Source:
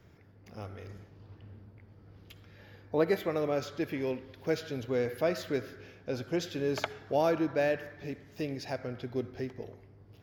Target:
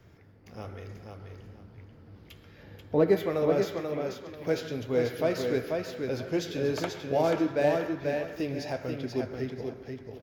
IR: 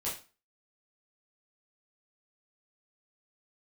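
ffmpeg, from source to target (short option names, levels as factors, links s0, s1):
-filter_complex "[0:a]asettb=1/sr,asplit=3[s0][s1][s2];[s0]atrim=end=2.634[s3];[s1]atrim=start=2.63:end=3.17,asetpts=PTS-STARTPTS,afade=t=in:d=0.004:c=qsin,afade=t=out:st=0.536:d=0.004:c=qsin,tiltshelf=f=850:g=4.5[s4];[s2]atrim=start=3.166[s5];[s3][s4]acrossfade=d=0.004:c1=hsin:c2=qsin[s6];[s6][s5]acrossfade=d=0.004:c1=qsin:c2=hsin,asettb=1/sr,asplit=3[s7][s8][s9];[s7]atrim=end=3.674[s10];[s8]atrim=start=3.67:end=4.37,asetpts=PTS-STARTPTS,afade=t=in:d=0.004:c=qsin,afade=t=out:st=0.696:d=0.004:c=qsin,acompressor=threshold=0.00794:ratio=6[s11];[s9]atrim=start=4.366[s12];[s10][s11]acrossfade=d=0.004:c1=hsin:c2=qsin[s13];[s13][s12]acrossfade=d=0.004:c1=qsin:c2=hsin,aecho=1:1:486|972|1458:0.562|0.135|0.0324,asplit=2[s14][s15];[1:a]atrim=start_sample=2205,adelay=109[s16];[s15][s16]afir=irnorm=-1:irlink=0,volume=0.1[s17];[s14][s17]amix=inputs=2:normalize=0,flanger=delay=7.2:depth=9.9:regen=-67:speed=1:shape=triangular,acrossover=split=770[s18][s19];[s19]asoftclip=type=tanh:threshold=0.0158[s20];[s18][s20]amix=inputs=2:normalize=0,volume=2.11"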